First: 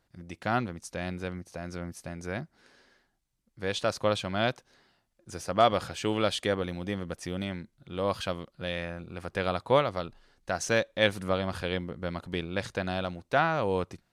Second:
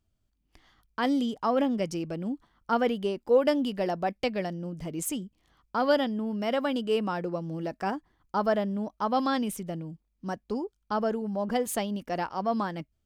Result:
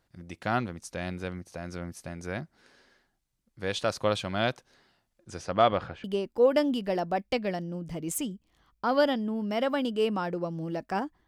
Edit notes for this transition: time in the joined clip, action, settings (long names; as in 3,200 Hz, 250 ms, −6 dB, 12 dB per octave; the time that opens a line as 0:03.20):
first
0:05.23–0:06.04: low-pass filter 10,000 Hz → 1,400 Hz
0:06.04: continue with second from 0:02.95